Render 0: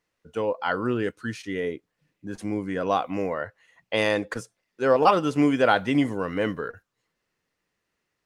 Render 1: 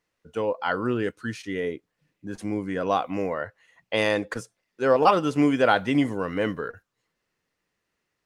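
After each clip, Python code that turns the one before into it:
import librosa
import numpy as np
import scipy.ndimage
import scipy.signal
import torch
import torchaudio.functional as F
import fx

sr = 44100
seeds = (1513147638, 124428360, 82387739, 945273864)

y = x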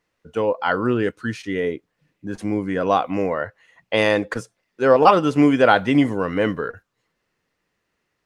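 y = fx.high_shelf(x, sr, hz=4900.0, db=-5.5)
y = F.gain(torch.from_numpy(y), 5.5).numpy()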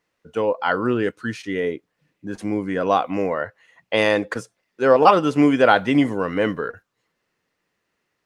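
y = fx.low_shelf(x, sr, hz=79.0, db=-9.5)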